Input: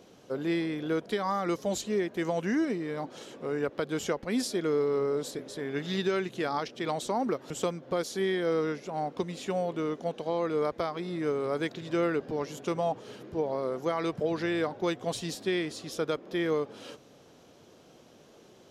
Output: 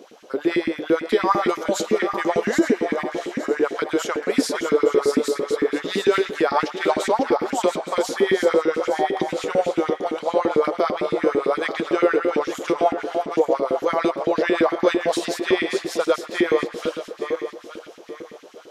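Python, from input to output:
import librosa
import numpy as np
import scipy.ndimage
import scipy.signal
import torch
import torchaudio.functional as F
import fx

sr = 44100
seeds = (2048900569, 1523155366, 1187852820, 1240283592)

y = fx.reverse_delay_fb(x, sr, ms=434, feedback_pct=54, wet_db=-6.0)
y = fx.echo_filtered(y, sr, ms=121, feedback_pct=76, hz=3300.0, wet_db=-16.0)
y = fx.filter_lfo_highpass(y, sr, shape='saw_up', hz=8.9, low_hz=210.0, high_hz=2400.0, q=2.8)
y = y * 10.0 ** (6.0 / 20.0)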